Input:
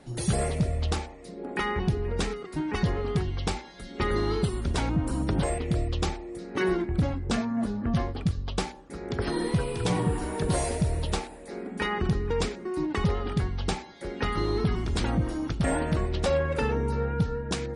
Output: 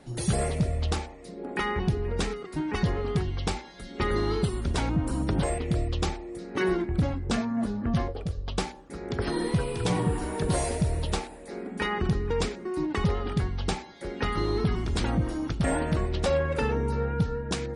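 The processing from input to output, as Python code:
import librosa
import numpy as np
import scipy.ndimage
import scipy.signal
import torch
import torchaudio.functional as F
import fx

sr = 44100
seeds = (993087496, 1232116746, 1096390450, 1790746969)

y = fx.graphic_eq(x, sr, hz=(125, 250, 500, 1000, 2000, 4000, 8000), db=(-5, -11, 10, -5, -5, -4, -4), at=(8.08, 8.48))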